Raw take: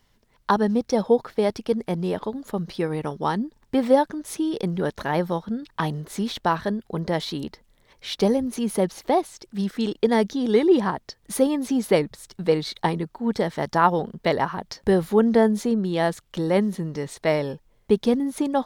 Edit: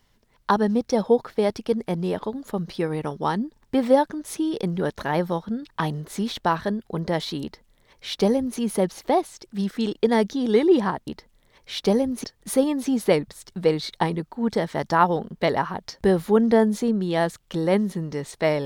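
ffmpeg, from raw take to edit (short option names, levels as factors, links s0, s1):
-filter_complex "[0:a]asplit=3[s0][s1][s2];[s0]atrim=end=11.072[s3];[s1]atrim=start=7.418:end=8.592[s4];[s2]atrim=start=11.068[s5];[s3][s4]acrossfade=d=0.004:c1=hsin:c2=hsin[s6];[s6][s5]acrossfade=d=0.004:c1=hsin:c2=hsin"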